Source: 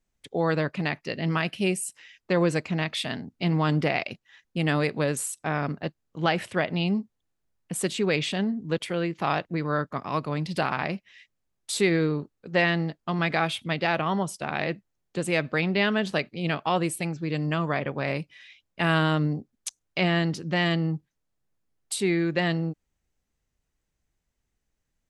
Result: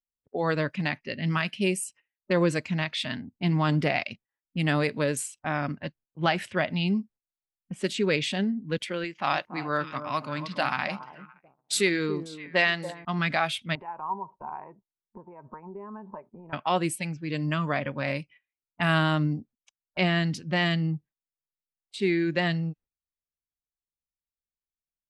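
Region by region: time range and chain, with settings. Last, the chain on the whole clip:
9.04–13.05 tilt +1.5 dB/oct + echo with dull and thin repeats by turns 0.284 s, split 1100 Hz, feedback 54%, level -8.5 dB
13.75–16.53 bell 390 Hz +8.5 dB 0.27 oct + compressor 12:1, threshold -35 dBFS + synth low-pass 950 Hz, resonance Q 8.2
whole clip: low-pass opened by the level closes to 450 Hz, open at -23.5 dBFS; gate -49 dBFS, range -15 dB; spectral noise reduction 10 dB

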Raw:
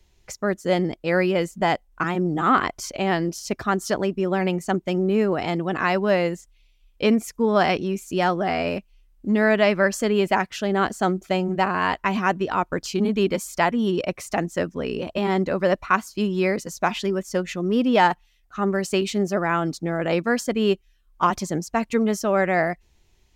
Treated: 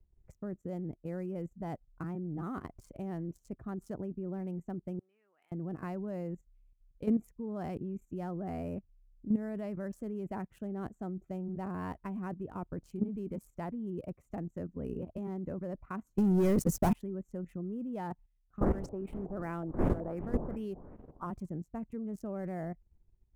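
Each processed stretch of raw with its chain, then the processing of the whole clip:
4.99–5.52 Chebyshev high-pass 2900 Hz + air absorption 260 m
16.18–16.93 bell 130 Hz -6.5 dB 0.22 oct + sample leveller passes 5
18.6–21.25 wind noise 560 Hz -24 dBFS + bell 110 Hz -8.5 dB 1.3 oct + LFO low-pass saw up 2.7 Hz 660–6900 Hz
whole clip: Wiener smoothing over 9 samples; EQ curve 120 Hz 0 dB, 3600 Hz -27 dB, 11000 Hz -9 dB; level quantiser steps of 12 dB; gain -1.5 dB

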